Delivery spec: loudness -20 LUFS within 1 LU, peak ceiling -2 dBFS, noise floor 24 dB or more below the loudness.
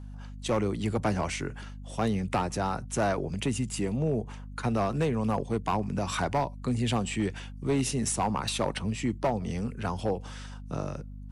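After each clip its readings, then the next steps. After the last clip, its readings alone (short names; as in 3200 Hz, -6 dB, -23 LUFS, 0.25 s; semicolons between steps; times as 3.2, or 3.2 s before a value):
clipped 1.0%; flat tops at -20.0 dBFS; hum 50 Hz; harmonics up to 250 Hz; hum level -40 dBFS; loudness -30.0 LUFS; peak -20.0 dBFS; loudness target -20.0 LUFS
-> clip repair -20 dBFS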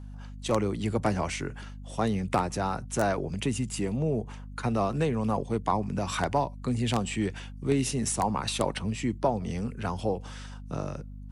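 clipped 0.0%; hum 50 Hz; harmonics up to 250 Hz; hum level -40 dBFS
-> de-hum 50 Hz, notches 5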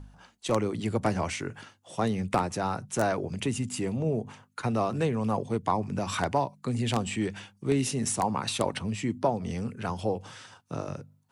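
hum none; loudness -30.0 LUFS; peak -10.5 dBFS; loudness target -20.0 LUFS
-> gain +10 dB; limiter -2 dBFS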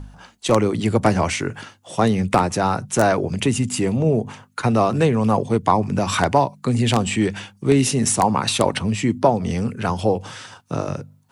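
loudness -20.0 LUFS; peak -2.0 dBFS; noise floor -55 dBFS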